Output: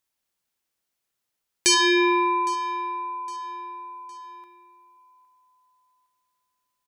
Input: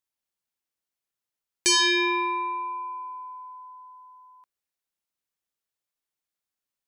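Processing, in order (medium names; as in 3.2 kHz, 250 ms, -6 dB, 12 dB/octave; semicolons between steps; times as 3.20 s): 1.74–2.54 s: tilt shelf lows +5 dB, about 1.5 kHz; in parallel at -1.5 dB: compression, threshold -45 dBFS, peak gain reduction 23.5 dB; on the sum: feedback delay 811 ms, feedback 38%, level -20 dB; trim +2 dB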